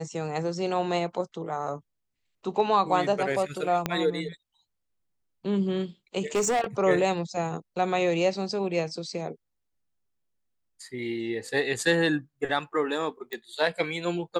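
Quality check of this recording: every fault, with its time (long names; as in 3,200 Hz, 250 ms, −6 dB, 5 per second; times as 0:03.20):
0:03.86: click −11 dBFS
0:06.35–0:06.64: clipping −21 dBFS
0:13.33: click −20 dBFS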